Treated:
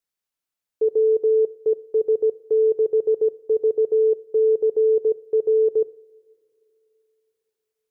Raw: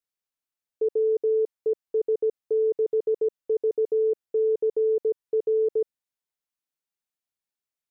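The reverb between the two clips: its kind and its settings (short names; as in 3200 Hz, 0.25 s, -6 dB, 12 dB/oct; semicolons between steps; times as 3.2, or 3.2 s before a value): two-slope reverb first 0.44 s, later 3.2 s, from -21 dB, DRR 14 dB; gain +3.5 dB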